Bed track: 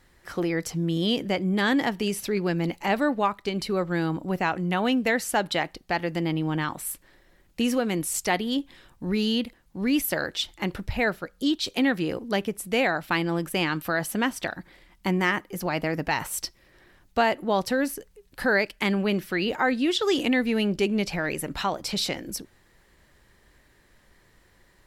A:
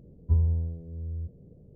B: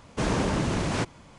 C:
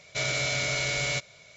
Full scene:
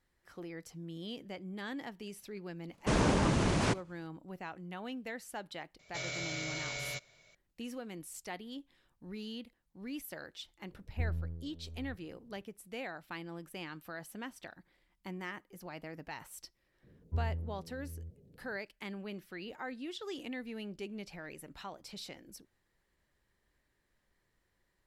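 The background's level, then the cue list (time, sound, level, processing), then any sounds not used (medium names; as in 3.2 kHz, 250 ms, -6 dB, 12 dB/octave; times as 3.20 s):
bed track -18.5 dB
2.69 s: add B -2.5 dB + expander -42 dBFS
5.79 s: add C -11 dB
10.68 s: add A -9.5 dB + partial rectifier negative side -7 dB
16.83 s: add A -8 dB + bass shelf 70 Hz -8.5 dB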